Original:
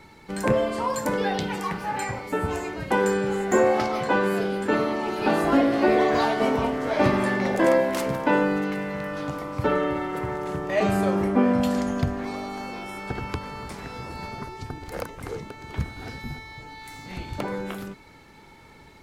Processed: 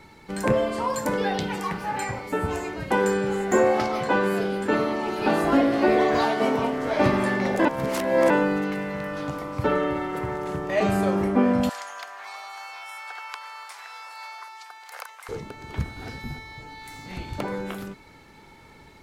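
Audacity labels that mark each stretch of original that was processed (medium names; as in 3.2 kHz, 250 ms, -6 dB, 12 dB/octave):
6.240000	6.770000	high-pass 120 Hz
7.650000	8.300000	reverse
11.690000	15.290000	high-pass 850 Hz 24 dB/octave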